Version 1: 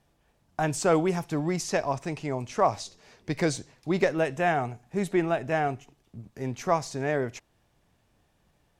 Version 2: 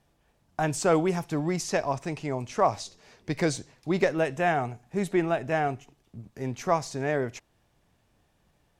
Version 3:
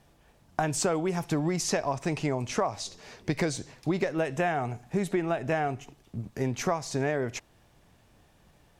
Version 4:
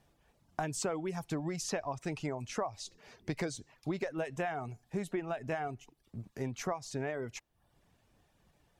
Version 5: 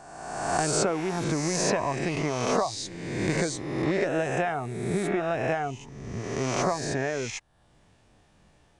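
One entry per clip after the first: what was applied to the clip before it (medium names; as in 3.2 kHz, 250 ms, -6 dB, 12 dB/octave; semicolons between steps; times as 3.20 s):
no audible change
compression 12:1, threshold -31 dBFS, peak gain reduction 14.5 dB; trim +7 dB
reverb removal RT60 0.55 s; trim -7.5 dB
reverse spectral sustain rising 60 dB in 1.36 s; resampled via 22.05 kHz; trim +6 dB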